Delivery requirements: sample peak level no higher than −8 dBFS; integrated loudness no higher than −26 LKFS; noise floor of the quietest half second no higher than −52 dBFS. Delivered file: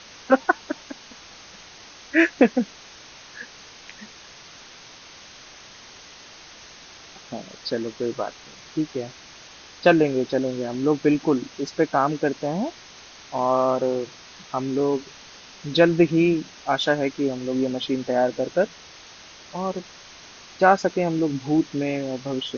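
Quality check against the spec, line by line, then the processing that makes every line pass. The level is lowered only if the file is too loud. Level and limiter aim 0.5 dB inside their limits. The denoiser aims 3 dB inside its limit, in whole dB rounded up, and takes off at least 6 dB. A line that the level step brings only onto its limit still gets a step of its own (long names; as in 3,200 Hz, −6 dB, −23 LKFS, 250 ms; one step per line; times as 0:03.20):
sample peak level −3.0 dBFS: out of spec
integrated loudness −23.0 LKFS: out of spec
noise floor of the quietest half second −45 dBFS: out of spec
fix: broadband denoise 7 dB, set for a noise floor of −45 dBFS
level −3.5 dB
brickwall limiter −8.5 dBFS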